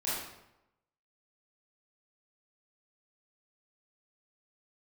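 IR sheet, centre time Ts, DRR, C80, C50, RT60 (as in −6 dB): 75 ms, −10.0 dB, 3.0 dB, −1.5 dB, 0.90 s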